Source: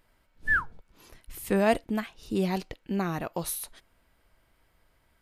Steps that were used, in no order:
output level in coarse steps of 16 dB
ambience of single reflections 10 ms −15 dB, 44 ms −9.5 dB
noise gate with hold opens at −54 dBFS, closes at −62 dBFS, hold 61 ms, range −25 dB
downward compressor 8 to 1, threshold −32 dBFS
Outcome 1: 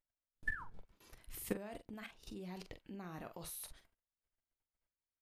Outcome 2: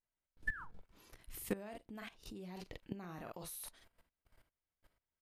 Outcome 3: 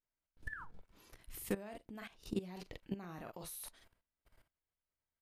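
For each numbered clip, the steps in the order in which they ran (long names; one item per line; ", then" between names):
downward compressor, then output level in coarse steps, then ambience of single reflections, then noise gate with hold
noise gate with hold, then ambience of single reflections, then downward compressor, then output level in coarse steps
downward compressor, then ambience of single reflections, then noise gate with hold, then output level in coarse steps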